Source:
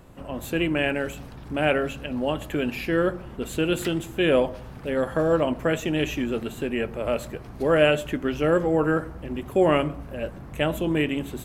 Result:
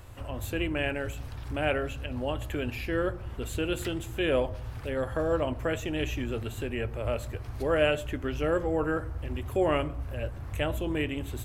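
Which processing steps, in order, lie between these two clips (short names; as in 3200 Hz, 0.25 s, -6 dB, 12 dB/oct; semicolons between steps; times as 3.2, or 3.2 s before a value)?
resonant low shelf 130 Hz +8 dB, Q 3; mismatched tape noise reduction encoder only; gain -5.5 dB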